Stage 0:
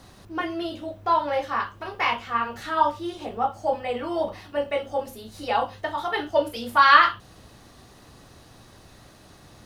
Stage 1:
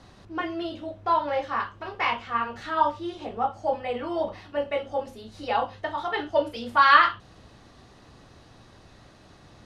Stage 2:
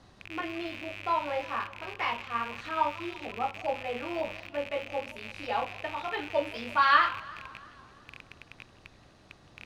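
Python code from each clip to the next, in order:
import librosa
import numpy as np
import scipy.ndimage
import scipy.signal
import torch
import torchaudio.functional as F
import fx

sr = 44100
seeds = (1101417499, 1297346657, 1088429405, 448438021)

y1 = scipy.signal.sosfilt(scipy.signal.bessel(2, 5100.0, 'lowpass', norm='mag', fs=sr, output='sos'), x)
y1 = F.gain(torch.from_numpy(y1), -1.5).numpy()
y2 = fx.rattle_buzz(y1, sr, strikes_db=-47.0, level_db=-23.0)
y2 = fx.echo_warbled(y2, sr, ms=169, feedback_pct=65, rate_hz=2.8, cents=209, wet_db=-20)
y2 = F.gain(torch.from_numpy(y2), -5.5).numpy()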